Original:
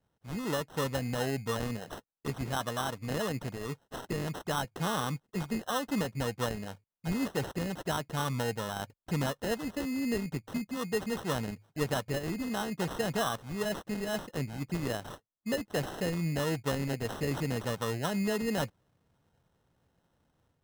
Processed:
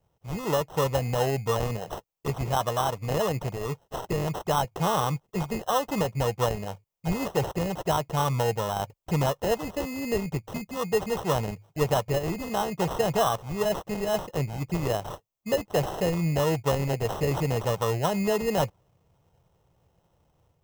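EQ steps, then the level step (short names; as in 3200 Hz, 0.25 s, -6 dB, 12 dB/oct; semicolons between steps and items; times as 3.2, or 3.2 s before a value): fifteen-band EQ 250 Hz -11 dB, 1600 Hz -11 dB, 4000 Hz -7 dB, 10000 Hz -7 dB; dynamic EQ 920 Hz, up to +3 dB, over -48 dBFS, Q 0.93; +8.5 dB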